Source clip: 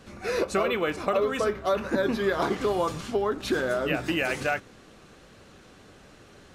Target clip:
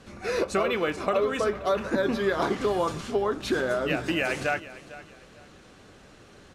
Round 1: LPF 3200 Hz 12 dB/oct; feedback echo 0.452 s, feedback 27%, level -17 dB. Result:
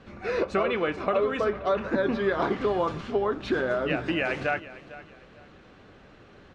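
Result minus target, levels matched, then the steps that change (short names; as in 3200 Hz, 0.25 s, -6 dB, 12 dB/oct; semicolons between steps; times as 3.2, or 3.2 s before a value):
8000 Hz band -13.5 dB
change: LPF 12000 Hz 12 dB/oct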